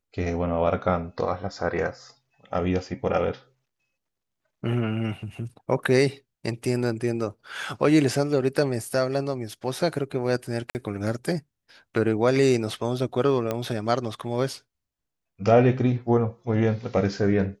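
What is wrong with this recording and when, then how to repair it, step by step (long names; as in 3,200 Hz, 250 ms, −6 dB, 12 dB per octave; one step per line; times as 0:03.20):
0:10.70–0:10.75: drop-out 49 ms
0:13.51: click −13 dBFS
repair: click removal
repair the gap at 0:10.70, 49 ms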